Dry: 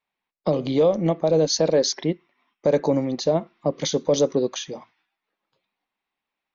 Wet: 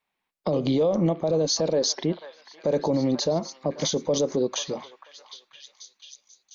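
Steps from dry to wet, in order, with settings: dynamic EQ 2000 Hz, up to -5 dB, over -41 dBFS, Q 1.2; on a send: delay with a stepping band-pass 0.488 s, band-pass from 1300 Hz, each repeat 0.7 oct, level -9 dB; on the sum: limiter -18 dBFS, peak gain reduction 9 dB; gain +3 dB

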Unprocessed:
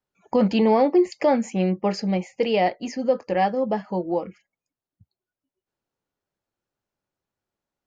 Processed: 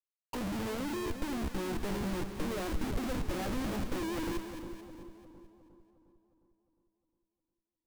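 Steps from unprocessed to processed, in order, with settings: rattling part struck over -32 dBFS, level -15 dBFS; auto-wah 310–3700 Hz, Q 13, down, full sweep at -24 dBFS; sample leveller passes 3; de-hum 68.11 Hz, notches 7; Schmitt trigger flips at -48 dBFS; low shelf 100 Hz +10.5 dB; split-band echo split 1000 Hz, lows 0.357 s, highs 0.219 s, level -8 dB; gain -3 dB

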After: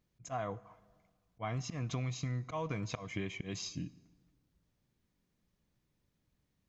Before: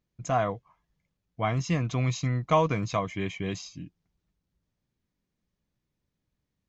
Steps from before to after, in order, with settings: auto swell 0.249 s; compressor 10:1, threshold -37 dBFS, peak gain reduction 14.5 dB; plate-style reverb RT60 1.5 s, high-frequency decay 0.65×, DRR 17.5 dB; gain +2.5 dB

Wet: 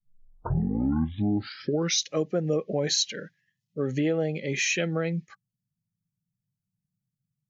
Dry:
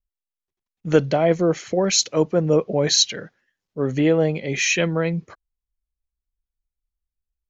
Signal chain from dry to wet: tape start at the beginning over 2.13 s; compressor 2.5:1, threshold -21 dBFS, peak gain reduction 6.5 dB; band noise 100–190 Hz -61 dBFS; spectral noise reduction 20 dB; gain -3 dB

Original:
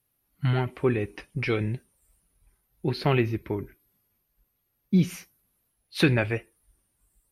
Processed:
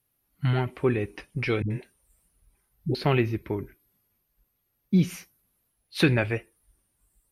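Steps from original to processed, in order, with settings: 1.62–2.95 dispersion highs, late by 84 ms, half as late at 320 Hz

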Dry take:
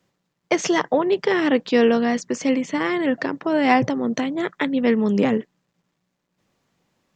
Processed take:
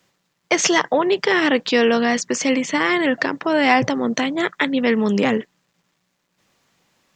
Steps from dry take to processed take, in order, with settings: in parallel at +3 dB: limiter -14 dBFS, peak gain reduction 11 dB; on the sum: tilt shelf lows -4.5 dB, about 800 Hz; gain -2.5 dB

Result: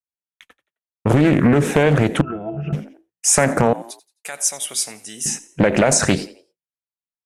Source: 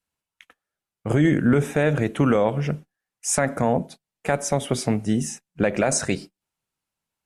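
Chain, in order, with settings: in parallel at +2.5 dB: limiter -15 dBFS, peak gain reduction 7 dB; on the sum: expander -39 dBFS; 3.73–5.26 differentiator; on a send: frequency-shifting echo 87 ms, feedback 34%, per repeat +59 Hz, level -19 dB; on the sum: compressor, threshold -13 dBFS, peak gain reduction 5 dB; 2.21–2.73 octave resonator E, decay 0.12 s; Doppler distortion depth 0.5 ms; gain +3.5 dB

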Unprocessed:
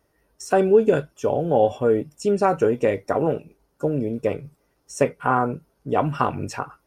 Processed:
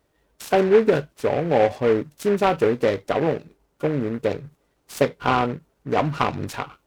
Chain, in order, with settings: noise-modulated delay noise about 1300 Hz, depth 0.055 ms

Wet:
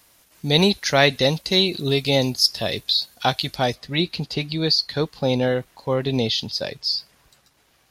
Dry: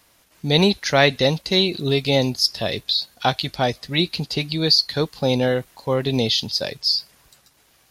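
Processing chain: high shelf 5800 Hz +5.5 dB, from 3.75 s -6.5 dB; gain -1 dB

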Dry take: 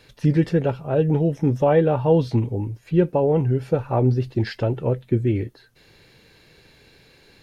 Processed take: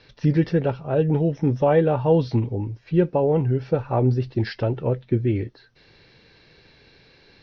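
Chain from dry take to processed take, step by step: Chebyshev low-pass 5800 Hz, order 6

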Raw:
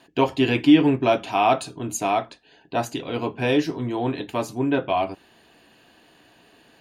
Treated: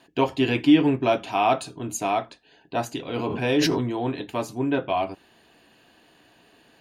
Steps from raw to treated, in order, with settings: 3.1–3.93 sustainer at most 30 dB/s; gain -2 dB

